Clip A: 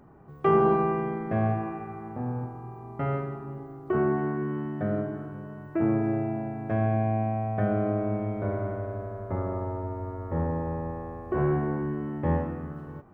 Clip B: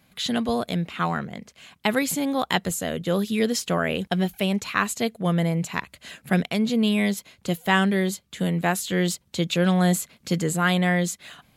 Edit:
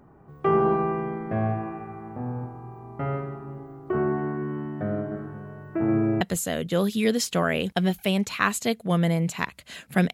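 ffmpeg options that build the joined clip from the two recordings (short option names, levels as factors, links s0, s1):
-filter_complex "[0:a]asplit=3[s0][s1][s2];[s0]afade=t=out:st=5.1:d=0.02[s3];[s1]aecho=1:1:128:0.473,afade=t=in:st=5.1:d=0.02,afade=t=out:st=6.21:d=0.02[s4];[s2]afade=t=in:st=6.21:d=0.02[s5];[s3][s4][s5]amix=inputs=3:normalize=0,apad=whole_dur=10.13,atrim=end=10.13,atrim=end=6.212[s6];[1:a]atrim=start=2.558:end=6.48[s7];[s6][s7]acrossfade=d=0.004:c1=hsin:c2=hsin"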